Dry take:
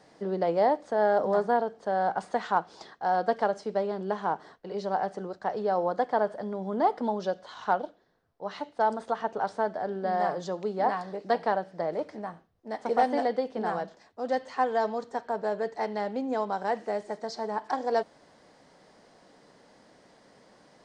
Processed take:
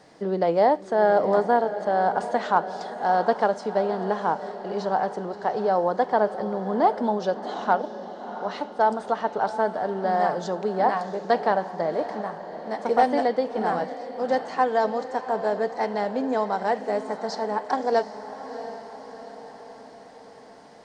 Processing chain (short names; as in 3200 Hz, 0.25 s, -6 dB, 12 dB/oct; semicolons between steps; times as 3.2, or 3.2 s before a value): diffused feedback echo 0.702 s, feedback 56%, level -12 dB; gain +4.5 dB